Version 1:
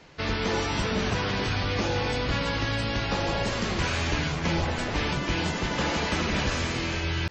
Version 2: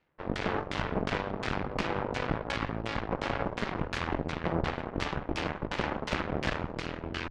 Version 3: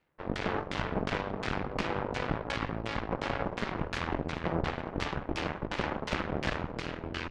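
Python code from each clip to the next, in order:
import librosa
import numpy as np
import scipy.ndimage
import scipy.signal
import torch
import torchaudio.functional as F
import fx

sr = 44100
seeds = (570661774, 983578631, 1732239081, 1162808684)

y1 = fx.filter_lfo_lowpass(x, sr, shape='saw_down', hz=2.8, low_hz=410.0, high_hz=3000.0, q=1.0)
y1 = fx.cheby_harmonics(y1, sr, harmonics=(4, 7), levels_db=(-9, -16), full_scale_db=-14.0)
y1 = fx.hum_notches(y1, sr, base_hz=50, count=2)
y1 = F.gain(torch.from_numpy(y1), -4.5).numpy()
y2 = y1 + 10.0 ** (-16.5 / 20.0) * np.pad(y1, (int(411 * sr / 1000.0), 0))[:len(y1)]
y2 = F.gain(torch.from_numpy(y2), -1.0).numpy()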